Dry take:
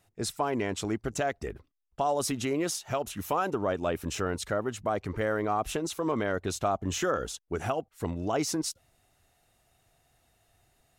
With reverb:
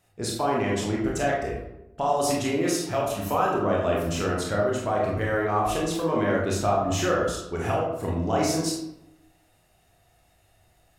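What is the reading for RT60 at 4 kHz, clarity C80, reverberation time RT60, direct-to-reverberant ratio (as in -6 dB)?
0.50 s, 5.0 dB, 0.90 s, -4.0 dB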